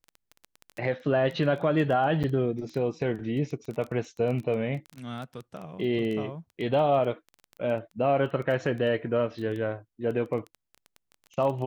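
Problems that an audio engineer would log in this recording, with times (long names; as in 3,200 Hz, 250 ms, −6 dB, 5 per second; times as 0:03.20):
surface crackle 11 per second −32 dBFS
0:02.23–0:02.24: drop-out 7.9 ms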